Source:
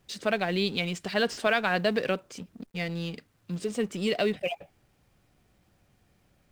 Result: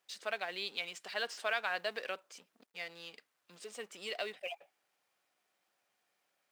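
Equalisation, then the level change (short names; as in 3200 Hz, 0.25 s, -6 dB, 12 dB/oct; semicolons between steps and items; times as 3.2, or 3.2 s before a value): HPF 700 Hz 12 dB/oct; -7.5 dB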